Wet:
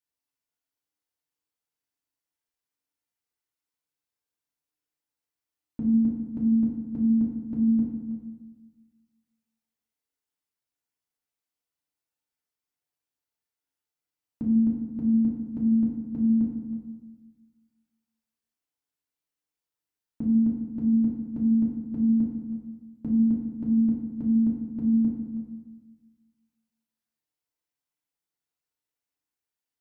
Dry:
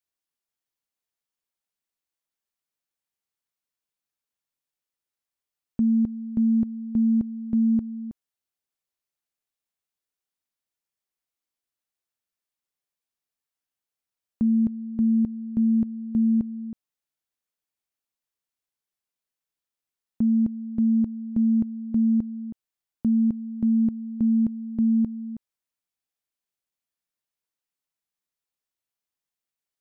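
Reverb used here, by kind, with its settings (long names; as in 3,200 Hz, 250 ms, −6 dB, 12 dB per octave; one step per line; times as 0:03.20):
feedback delay network reverb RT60 1.2 s, low-frequency decay 1.3×, high-frequency decay 0.6×, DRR −4.5 dB
level −6.5 dB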